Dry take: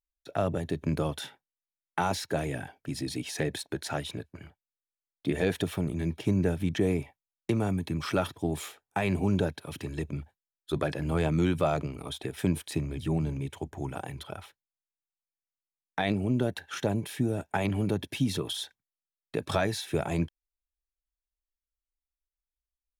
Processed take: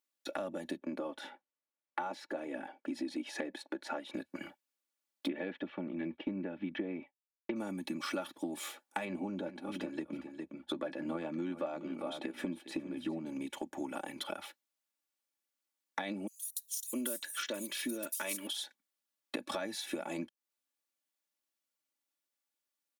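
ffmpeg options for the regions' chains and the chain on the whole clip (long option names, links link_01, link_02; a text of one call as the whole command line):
ffmpeg -i in.wav -filter_complex "[0:a]asettb=1/sr,asplit=3[link_01][link_02][link_03];[link_01]atrim=end=0.774[link_04];[link_02]atrim=start=0.77:end=4.14,asetpts=PTS-STARTPTS,afade=type=in:duration=0.004:curve=qsin,afade=type=out:start_time=3.366:duration=0.004:curve=qsin,lowpass=frequency=1100:poles=1,equalizer=frequency=120:width=0.81:gain=-11.5[link_05];[link_03]atrim=start=4.136[link_06];[link_04][link_05]acrossfade=duration=0.004:curve1=hsin:curve2=qsin[link_07];[link_07][link_06]acrossfade=duration=0.004:curve1=qsin:curve2=hsin,asettb=1/sr,asplit=3[link_08][link_09][link_10];[link_08]atrim=end=5.284[link_11];[link_09]atrim=start=5.28:end=7.56,asetpts=PTS-STARTPTS,afade=type=in:duration=0.004:curve=qsin,afade=type=out:start_time=2.276:duration=0.004:curve=qsin,lowpass=frequency=3000:width=0.5412,lowpass=frequency=3000:width=1.3066,agate=range=-33dB:threshold=-39dB:ratio=3:release=100:detection=peak[link_12];[link_10]atrim=start=7.556[link_13];[link_11][link_12]acrossfade=duration=0.004:curve1=hsin:curve2=qsin[link_14];[link_14][link_13]acrossfade=duration=0.004:curve1=qsin:curve2=hsin,asettb=1/sr,asplit=3[link_15][link_16][link_17];[link_15]atrim=end=9.054[link_18];[link_16]atrim=start=9.05:end=13.26,asetpts=PTS-STARTPTS,afade=type=in:duration=0.004:curve=qsin,afade=type=out:start_time=4.206:duration=0.004:curve=qsin,lowpass=frequency=1900:poles=1,asplit=2[link_19][link_20];[link_20]adelay=12,volume=-12dB[link_21];[link_19][link_21]amix=inputs=2:normalize=0,atrim=end_sample=185661,aecho=1:1:408:0.211,atrim=end_sample=185661[link_22];[link_17]atrim=start=13.256[link_23];[link_18][link_22]acrossfade=duration=0.004:curve1=hsin:curve2=qsin[link_24];[link_24][link_23]acrossfade=duration=0.004:curve1=qsin:curve2=hsin,asettb=1/sr,asplit=3[link_25][link_26][link_27];[link_25]atrim=end=16.274[link_28];[link_26]atrim=start=16.27:end=18.47,asetpts=PTS-STARTPTS,afade=type=in:duration=0.004:curve=qsin,afade=type=out:start_time=2.196:duration=0.004:curve=qsin,asuperstop=centerf=780:order=4:qfactor=3.4,aemphasis=mode=production:type=riaa,acrossover=split=5800[link_29][link_30];[link_29]adelay=660[link_31];[link_31][link_30]amix=inputs=2:normalize=0,atrim=end_sample=97020[link_32];[link_27]atrim=start=18.466[link_33];[link_28][link_32]acrossfade=duration=0.004:curve1=hsin:curve2=qsin[link_34];[link_34][link_33]acrossfade=duration=0.004:curve1=qsin:curve2=hsin,highpass=frequency=190:width=0.5412,highpass=frequency=190:width=1.3066,acompressor=threshold=-43dB:ratio=6,aecho=1:1:3.5:0.73,volume=5dB" out.wav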